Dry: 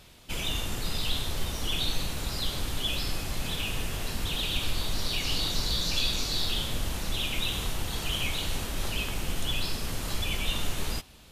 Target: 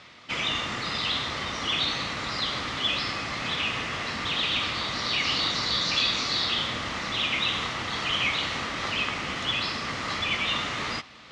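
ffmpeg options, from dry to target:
-af "areverse,acompressor=mode=upward:threshold=0.00447:ratio=2.5,areverse,highpass=150,equalizer=f=170:t=q:w=4:g=-4,equalizer=f=390:t=q:w=4:g=-4,equalizer=f=1200:t=q:w=4:g=10,equalizer=f=2000:t=q:w=4:g=10,lowpass=f=5700:w=0.5412,lowpass=f=5700:w=1.3066,volume=1.58"

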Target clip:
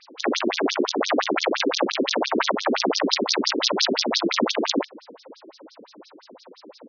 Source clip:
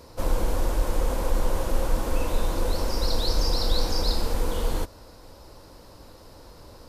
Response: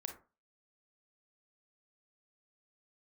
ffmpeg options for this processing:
-filter_complex "[0:a]equalizer=f=65:t=o:w=2.4:g=13.5,acontrast=74,asplit=2[s0][s1];[s1]adelay=582,lowpass=f=1500:p=1,volume=0.126,asplit=2[s2][s3];[s3]adelay=582,lowpass=f=1500:p=1,volume=0.24[s4];[s0][s2][s4]amix=inputs=3:normalize=0,aeval=exprs='(mod(2.99*val(0)+1,2)-1)/2.99':c=same,afftfilt=real='re*between(b*sr/1024,290*pow(4800/290,0.5+0.5*sin(2*PI*5.8*pts/sr))/1.41,290*pow(4800/290,0.5+0.5*sin(2*PI*5.8*pts/sr))*1.41)':imag='im*between(b*sr/1024,290*pow(4800/290,0.5+0.5*sin(2*PI*5.8*pts/sr))/1.41,290*pow(4800/290,0.5+0.5*sin(2*PI*5.8*pts/sr))*1.41)':win_size=1024:overlap=0.75,volume=1.33"

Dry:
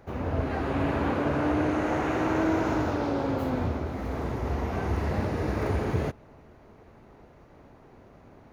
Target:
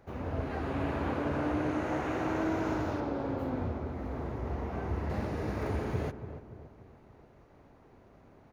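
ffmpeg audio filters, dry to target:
-filter_complex "[0:a]asettb=1/sr,asplit=3[s0][s1][s2];[s0]atrim=end=3.004[s3];[s1]atrim=start=3:end=5.1,asetpts=PTS-STARTPTS,afade=t=in:d=0.004:c=qsin,afade=t=out:st=2.096:d=0.004:c=qsin,highshelf=f=3000:g=-9[s4];[s2]atrim=start=5.096[s5];[s3][s4]acrossfade=d=0.004:c1=hsin:c2=qsin[s6];[s6][s5]acrossfade=d=0.004:c1=qsin:c2=hsin,asplit=2[s7][s8];[s8]adelay=287,lowpass=f=1200:p=1,volume=0.316,asplit=2[s9][s10];[s10]adelay=287,lowpass=f=1200:p=1,volume=0.5,asplit=2[s11][s12];[s12]adelay=287,lowpass=f=1200:p=1,volume=0.5,asplit=2[s13][s14];[s14]adelay=287,lowpass=f=1200:p=1,volume=0.5,asplit=2[s15][s16];[s16]adelay=287,lowpass=f=1200:p=1,volume=0.5[s17];[s7][s9][s11][s13][s15][s17]amix=inputs=6:normalize=0,volume=0.501"

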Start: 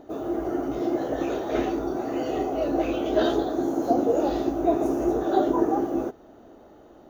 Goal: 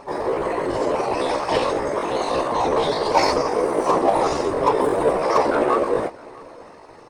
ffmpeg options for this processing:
-filter_complex "[0:a]lowpass=4000,asplit=2[s0][s1];[s1]asoftclip=type=tanh:threshold=0.0531,volume=0.668[s2];[s0][s2]amix=inputs=2:normalize=0,crystalizer=i=4.5:c=0,afftfilt=real='hypot(re,im)*cos(2*PI*random(0))':imag='hypot(re,im)*sin(2*PI*random(1))':win_size=512:overlap=0.75,asetrate=62367,aresample=44100,atempo=0.707107,asplit=2[s3][s4];[s4]aecho=0:1:648:0.0668[s5];[s3][s5]amix=inputs=2:normalize=0,volume=2.37"

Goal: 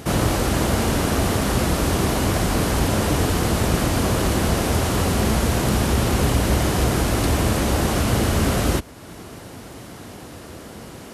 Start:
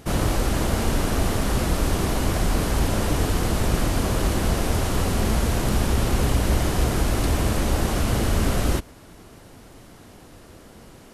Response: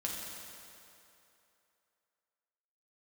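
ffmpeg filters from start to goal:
-filter_complex "[0:a]highpass=64,asplit=2[s0][s1];[s1]acompressor=threshold=0.00891:ratio=6,volume=1[s2];[s0][s2]amix=inputs=2:normalize=0,volume=1.41"

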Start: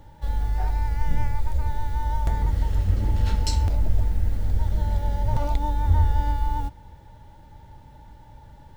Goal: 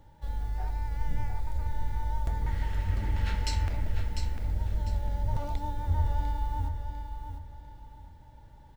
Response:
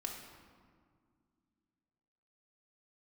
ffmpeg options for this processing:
-filter_complex "[0:a]asettb=1/sr,asplit=3[s0][s1][s2];[s0]atrim=end=2.464[s3];[s1]atrim=start=2.46:end=3.85,asetpts=PTS-STARTPTS,afade=t=in:d=0.004:c=qsin,afade=t=out:st=1.386:d=0.004:c=qsin,equalizer=f=2000:t=o:w=1.4:g=11.5[s4];[s2]atrim=start=3.846[s5];[s3][s4]acrossfade=d=0.004:c1=hsin:c2=qsin[s6];[s6][s5]acrossfade=d=0.004:c1=qsin:c2=hsin,aecho=1:1:699|1398|2097|2796:0.422|0.131|0.0405|0.0126,volume=0.398"

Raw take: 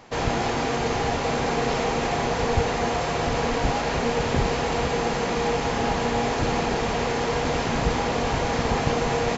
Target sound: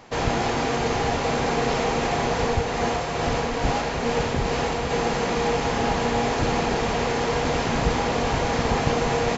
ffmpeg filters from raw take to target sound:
-filter_complex "[0:a]asettb=1/sr,asplit=3[s0][s1][s2];[s0]atrim=end=2.434[s3];[s1]atrim=start=2.43:end=4.91,asetpts=PTS-STARTPTS,afade=t=in:d=0.004:c=qsin,afade=t=out:st=2.476:d=0.004:c=qsin,tremolo=f=2.3:d=0.31[s4];[s2]atrim=start=4.906[s5];[s3][s4]acrossfade=d=0.004:c1=hsin:c2=qsin[s6];[s6][s5]acrossfade=d=0.004:c1=qsin:c2=hsin,volume=1.12"

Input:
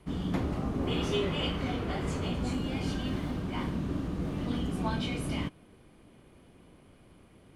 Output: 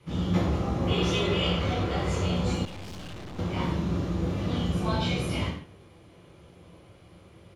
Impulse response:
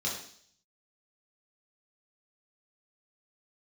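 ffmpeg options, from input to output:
-filter_complex "[0:a]equalizer=f=230:w=3:g=-11,asplit=4[s0][s1][s2][s3];[s1]adelay=82,afreqshift=-55,volume=0.158[s4];[s2]adelay=164,afreqshift=-110,volume=0.0525[s5];[s3]adelay=246,afreqshift=-165,volume=0.0172[s6];[s0][s4][s5][s6]amix=inputs=4:normalize=0[s7];[1:a]atrim=start_sample=2205,afade=t=out:st=0.21:d=0.01,atrim=end_sample=9702[s8];[s7][s8]afir=irnorm=-1:irlink=0,asettb=1/sr,asplit=3[s9][s10][s11];[s9]atrim=end=2.654[s12];[s10]atrim=start=2.65:end=3.39,asetpts=PTS-STARTPTS,afade=t=in:d=0.004:c=qsin,afade=t=out:st=0.736:d=0.004:c=qsin,aeval=exprs='(tanh(89.1*val(0)+0.75)-tanh(0.75))/89.1':c=same[s13];[s11]atrim=start=3.386[s14];[s12][s13]acrossfade=d=0.004:c1=hsin:c2=qsin[s15];[s15][s14]acrossfade=d=0.004:c1=qsin:c2=hsin"

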